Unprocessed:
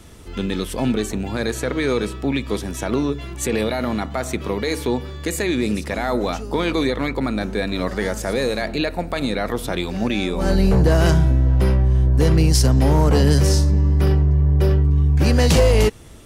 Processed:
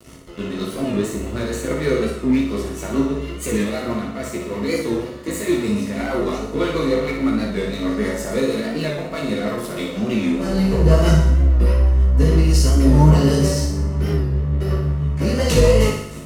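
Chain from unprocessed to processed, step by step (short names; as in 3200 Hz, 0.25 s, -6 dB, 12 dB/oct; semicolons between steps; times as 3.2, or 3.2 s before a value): notch 3500 Hz, Q 11; reverse; upward compressor, threshold -20 dBFS; reverse; rotary speaker horn 6.3 Hz; chorus voices 6, 0.44 Hz, delay 17 ms, depth 2.9 ms; crossover distortion -36.5 dBFS; notch comb 800 Hz; flutter echo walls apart 10.1 m, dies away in 0.73 s; on a send at -3 dB: reverb RT60 0.30 s, pre-delay 7 ms; on the sum: record warp 45 rpm, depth 100 cents; gain +3.5 dB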